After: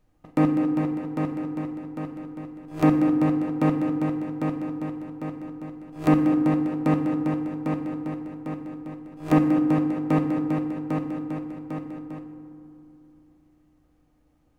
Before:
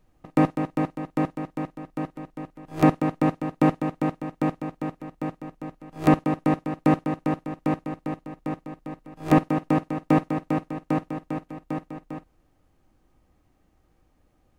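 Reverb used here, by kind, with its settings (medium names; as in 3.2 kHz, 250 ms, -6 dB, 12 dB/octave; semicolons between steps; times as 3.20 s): FDN reverb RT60 2.9 s, low-frequency decay 1.3×, high-frequency decay 0.35×, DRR 4.5 dB; trim -3.5 dB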